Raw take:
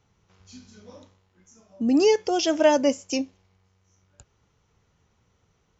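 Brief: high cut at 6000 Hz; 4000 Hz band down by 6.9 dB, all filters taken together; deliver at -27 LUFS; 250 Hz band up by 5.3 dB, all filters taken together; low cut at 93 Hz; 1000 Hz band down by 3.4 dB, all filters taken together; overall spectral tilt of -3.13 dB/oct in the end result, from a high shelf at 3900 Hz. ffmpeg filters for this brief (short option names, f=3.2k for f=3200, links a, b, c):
-af "highpass=93,lowpass=6k,equalizer=f=250:t=o:g=6.5,equalizer=f=1k:t=o:g=-4.5,highshelf=f=3.9k:g=-4,equalizer=f=4k:t=o:g=-6,volume=-7dB"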